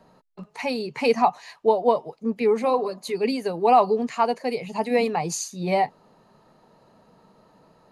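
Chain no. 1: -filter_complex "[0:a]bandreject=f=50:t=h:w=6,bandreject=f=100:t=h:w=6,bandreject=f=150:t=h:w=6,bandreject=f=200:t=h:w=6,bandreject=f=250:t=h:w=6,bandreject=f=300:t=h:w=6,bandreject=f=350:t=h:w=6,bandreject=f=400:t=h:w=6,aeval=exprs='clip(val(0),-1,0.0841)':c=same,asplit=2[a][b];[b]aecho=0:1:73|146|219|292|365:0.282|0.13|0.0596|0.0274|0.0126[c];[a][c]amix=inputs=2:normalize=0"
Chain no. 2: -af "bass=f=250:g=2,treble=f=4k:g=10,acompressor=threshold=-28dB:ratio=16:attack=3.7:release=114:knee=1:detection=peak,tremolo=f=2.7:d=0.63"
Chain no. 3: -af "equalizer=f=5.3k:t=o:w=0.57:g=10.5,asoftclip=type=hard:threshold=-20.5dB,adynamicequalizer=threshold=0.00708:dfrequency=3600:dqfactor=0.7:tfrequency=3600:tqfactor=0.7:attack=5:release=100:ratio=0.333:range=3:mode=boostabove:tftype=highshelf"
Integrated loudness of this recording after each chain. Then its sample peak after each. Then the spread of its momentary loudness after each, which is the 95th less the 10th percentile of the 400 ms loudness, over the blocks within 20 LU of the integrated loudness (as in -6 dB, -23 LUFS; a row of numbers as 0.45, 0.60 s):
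-25.0, -36.0, -25.5 LUFS; -5.5, -19.0, -12.5 dBFS; 8, 5, 7 LU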